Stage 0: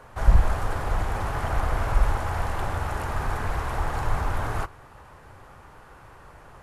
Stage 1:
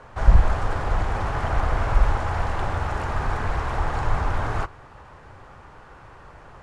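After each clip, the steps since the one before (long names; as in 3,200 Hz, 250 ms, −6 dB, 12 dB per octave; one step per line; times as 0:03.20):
Bessel low-pass filter 6,100 Hz, order 4
level +2.5 dB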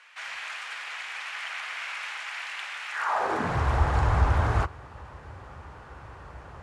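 high-pass filter sweep 2,400 Hz → 63 Hz, 0:02.91–0:03.69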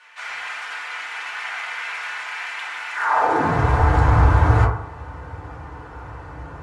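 feedback delay network reverb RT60 0.65 s, low-frequency decay 0.95×, high-frequency decay 0.3×, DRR −6 dB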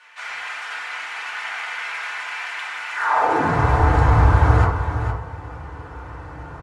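single-tap delay 460 ms −8.5 dB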